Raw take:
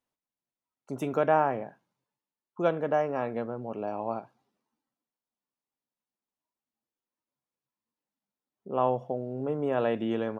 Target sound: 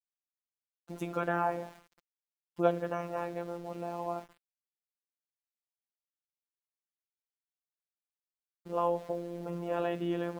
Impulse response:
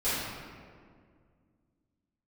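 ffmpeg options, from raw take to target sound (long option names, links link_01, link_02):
-filter_complex "[0:a]asplit=2[link_01][link_02];[1:a]atrim=start_sample=2205[link_03];[link_02][link_03]afir=irnorm=-1:irlink=0,volume=-31dB[link_04];[link_01][link_04]amix=inputs=2:normalize=0,aeval=exprs='val(0)*gte(abs(val(0)),0.00447)':channel_layout=same,afftfilt=real='hypot(re,im)*cos(PI*b)':imag='0':win_size=1024:overlap=0.75"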